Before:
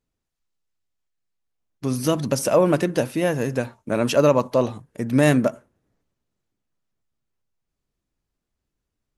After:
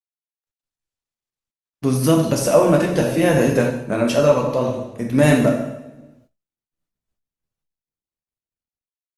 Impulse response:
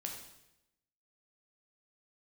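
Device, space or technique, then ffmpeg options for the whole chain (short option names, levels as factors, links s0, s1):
speakerphone in a meeting room: -filter_complex "[1:a]atrim=start_sample=2205[s0];[0:a][s0]afir=irnorm=-1:irlink=0,dynaudnorm=f=200:g=5:m=7.08,agate=range=0.02:threshold=0.00224:ratio=16:detection=peak,volume=0.891" -ar 48000 -c:a libopus -b:a 32k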